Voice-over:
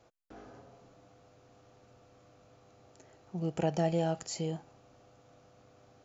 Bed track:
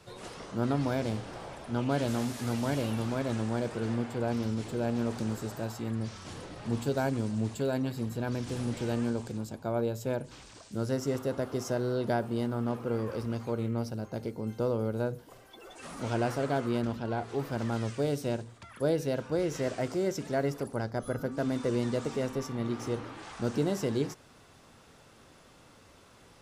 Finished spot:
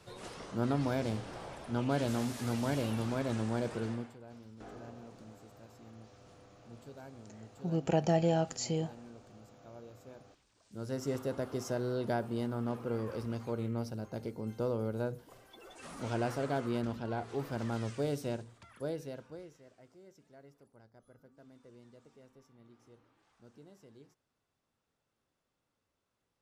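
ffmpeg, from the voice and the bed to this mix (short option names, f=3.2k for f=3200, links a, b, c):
-filter_complex "[0:a]adelay=4300,volume=1.5dB[a];[1:a]volume=14.5dB,afade=t=out:st=3.77:d=0.41:silence=0.11885,afade=t=in:st=10.57:d=0.52:silence=0.141254,afade=t=out:st=18.15:d=1.43:silence=0.0668344[b];[a][b]amix=inputs=2:normalize=0"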